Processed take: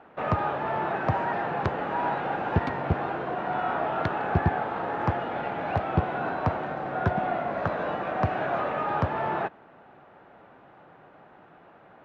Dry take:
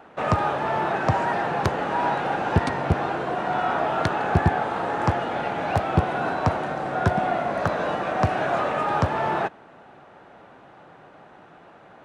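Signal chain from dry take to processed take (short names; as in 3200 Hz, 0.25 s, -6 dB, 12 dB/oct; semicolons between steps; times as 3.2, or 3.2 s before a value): LPF 3000 Hz 12 dB/oct; gain -4 dB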